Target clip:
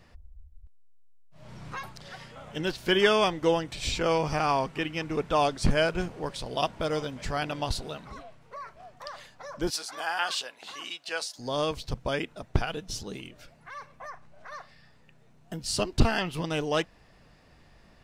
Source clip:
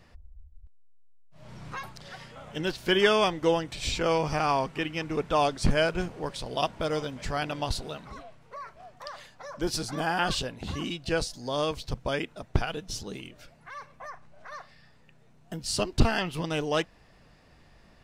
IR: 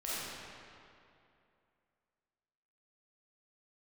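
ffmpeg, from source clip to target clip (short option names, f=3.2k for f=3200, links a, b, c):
-filter_complex "[0:a]asettb=1/sr,asplit=3[a][b][c];[a]atrim=end=9.704[d];[b]atrim=start=9.7:end=11.39,asetpts=PTS-STARTPTS,afade=t=in:d=0.004:c=qsin,afade=t=out:st=1.686:d=0.004:c=qsin,highpass=810[e];[c]atrim=start=11.386[f];[d][e]acrossfade=d=0.004:c1=hsin:c2=qsin[g];[g][f]acrossfade=d=0.004:c1=qsin:c2=hsin"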